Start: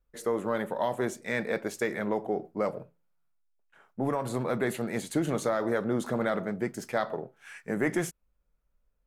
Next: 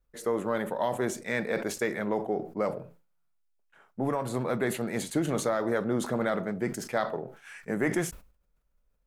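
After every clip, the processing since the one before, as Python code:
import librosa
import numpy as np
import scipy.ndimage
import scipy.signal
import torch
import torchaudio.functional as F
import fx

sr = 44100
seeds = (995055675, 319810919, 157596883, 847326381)

y = fx.sustainer(x, sr, db_per_s=120.0)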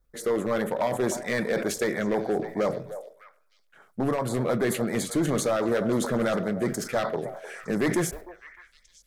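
y = np.clip(x, -10.0 ** (-24.0 / 20.0), 10.0 ** (-24.0 / 20.0))
y = fx.filter_lfo_notch(y, sr, shape='square', hz=9.8, low_hz=910.0, high_hz=2700.0, q=2.1)
y = fx.echo_stepped(y, sr, ms=304, hz=650.0, octaves=1.4, feedback_pct=70, wet_db=-10.0)
y = F.gain(torch.from_numpy(y), 5.0).numpy()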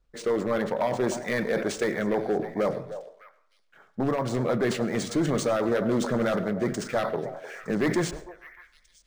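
y = fx.rev_plate(x, sr, seeds[0], rt60_s=0.53, hf_ratio=0.55, predelay_ms=85, drr_db=17.5)
y = np.interp(np.arange(len(y)), np.arange(len(y))[::3], y[::3])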